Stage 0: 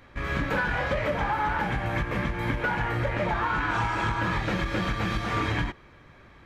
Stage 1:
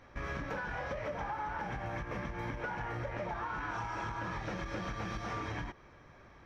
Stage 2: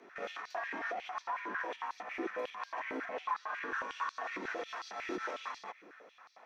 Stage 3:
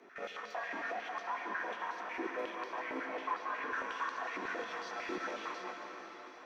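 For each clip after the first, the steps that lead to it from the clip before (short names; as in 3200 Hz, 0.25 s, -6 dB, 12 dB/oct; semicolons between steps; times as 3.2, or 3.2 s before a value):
EQ curve 280 Hz 0 dB, 710 Hz +4 dB, 7700 Hz -7 dB; compressor, threshold -30 dBFS, peak gain reduction 9.5 dB; bell 5700 Hz +14.5 dB 0.3 oct; gain -5.5 dB
limiter -31 dBFS, peak gain reduction 5.5 dB; frequency shift +150 Hz; stepped high-pass 11 Hz 350–4500 Hz; gain -2.5 dB
reverb RT60 5.2 s, pre-delay 81 ms, DRR 3 dB; gain -1.5 dB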